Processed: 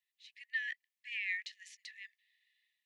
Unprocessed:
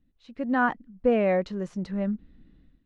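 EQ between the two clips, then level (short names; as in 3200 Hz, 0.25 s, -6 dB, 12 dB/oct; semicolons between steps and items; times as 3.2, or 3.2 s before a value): brick-wall FIR high-pass 1700 Hz; +1.5 dB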